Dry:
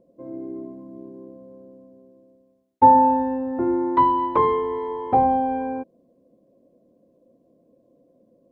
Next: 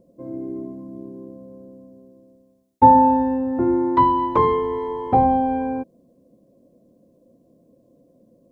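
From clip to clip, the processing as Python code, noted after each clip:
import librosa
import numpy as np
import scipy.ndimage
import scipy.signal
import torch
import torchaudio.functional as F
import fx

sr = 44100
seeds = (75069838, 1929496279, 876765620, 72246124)

y = fx.bass_treble(x, sr, bass_db=7, treble_db=8)
y = y * 10.0 ** (1.0 / 20.0)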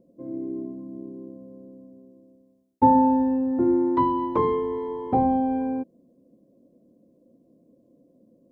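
y = fx.peak_eq(x, sr, hz=280.0, db=8.0, octaves=1.7)
y = y * 10.0 ** (-8.5 / 20.0)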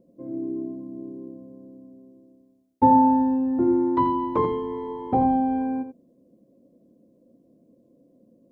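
y = x + 10.0 ** (-10.0 / 20.0) * np.pad(x, (int(85 * sr / 1000.0), 0))[:len(x)]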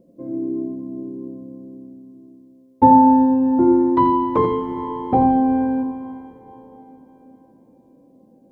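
y = fx.rev_plate(x, sr, seeds[0], rt60_s=4.7, hf_ratio=0.95, predelay_ms=0, drr_db=11.0)
y = y * 10.0 ** (5.0 / 20.0)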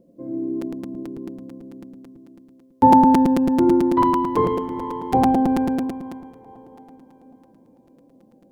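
y = fx.buffer_crackle(x, sr, first_s=0.61, period_s=0.11, block=256, kind='repeat')
y = y * 10.0 ** (-1.5 / 20.0)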